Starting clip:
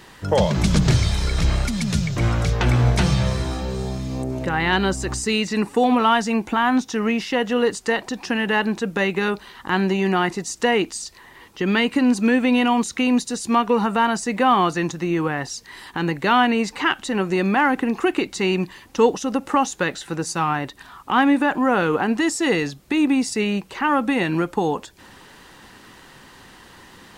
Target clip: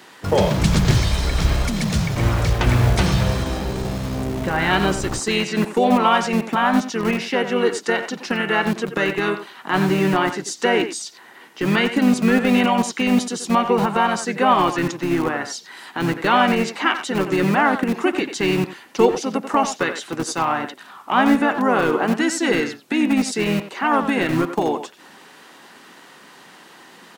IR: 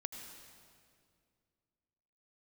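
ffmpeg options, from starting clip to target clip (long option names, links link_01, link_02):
-filter_complex "[0:a]acrossover=split=180|950|3500[link_01][link_02][link_03][link_04];[link_01]acrusher=bits=4:mix=0:aa=0.000001[link_05];[link_05][link_02][link_03][link_04]amix=inputs=4:normalize=0,asplit=2[link_06][link_07];[link_07]asetrate=35002,aresample=44100,atempo=1.25992,volume=-6dB[link_08];[link_06][link_08]amix=inputs=2:normalize=0,asplit=2[link_09][link_10];[link_10]adelay=90,highpass=300,lowpass=3400,asoftclip=type=hard:threshold=-12.5dB,volume=-9dB[link_11];[link_09][link_11]amix=inputs=2:normalize=0"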